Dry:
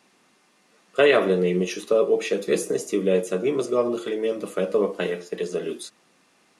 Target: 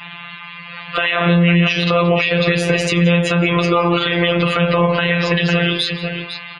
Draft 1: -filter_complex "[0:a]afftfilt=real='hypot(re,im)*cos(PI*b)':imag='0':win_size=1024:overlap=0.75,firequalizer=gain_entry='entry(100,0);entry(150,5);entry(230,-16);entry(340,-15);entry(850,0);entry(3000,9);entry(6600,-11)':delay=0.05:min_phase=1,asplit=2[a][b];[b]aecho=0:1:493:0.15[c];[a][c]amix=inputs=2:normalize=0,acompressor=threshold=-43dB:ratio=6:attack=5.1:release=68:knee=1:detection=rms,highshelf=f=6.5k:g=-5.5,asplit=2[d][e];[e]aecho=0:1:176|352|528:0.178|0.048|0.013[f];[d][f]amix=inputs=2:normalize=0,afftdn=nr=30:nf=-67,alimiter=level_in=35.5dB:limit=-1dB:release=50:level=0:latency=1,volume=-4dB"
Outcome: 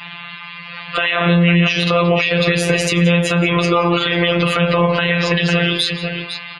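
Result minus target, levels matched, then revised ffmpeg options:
8000 Hz band +4.5 dB
-filter_complex "[0:a]afftfilt=real='hypot(re,im)*cos(PI*b)':imag='0':win_size=1024:overlap=0.75,firequalizer=gain_entry='entry(100,0);entry(150,5);entry(230,-16);entry(340,-15);entry(850,0);entry(3000,9);entry(6600,-11)':delay=0.05:min_phase=1,asplit=2[a][b];[b]aecho=0:1:493:0.15[c];[a][c]amix=inputs=2:normalize=0,acompressor=threshold=-43dB:ratio=6:attack=5.1:release=68:knee=1:detection=rms,highshelf=f=6.5k:g=-13,asplit=2[d][e];[e]aecho=0:1:176|352|528:0.178|0.048|0.013[f];[d][f]amix=inputs=2:normalize=0,afftdn=nr=30:nf=-67,alimiter=level_in=35.5dB:limit=-1dB:release=50:level=0:latency=1,volume=-4dB"

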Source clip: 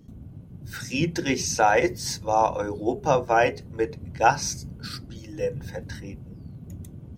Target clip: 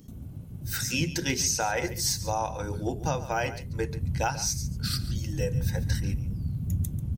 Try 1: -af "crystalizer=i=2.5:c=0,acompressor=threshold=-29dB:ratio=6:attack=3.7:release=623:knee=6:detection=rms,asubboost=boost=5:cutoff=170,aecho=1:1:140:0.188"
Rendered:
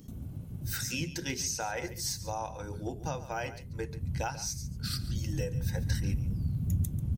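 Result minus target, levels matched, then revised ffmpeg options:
compressor: peak gain reduction +7 dB
-af "crystalizer=i=2.5:c=0,acompressor=threshold=-20.5dB:ratio=6:attack=3.7:release=623:knee=6:detection=rms,asubboost=boost=5:cutoff=170,aecho=1:1:140:0.188"

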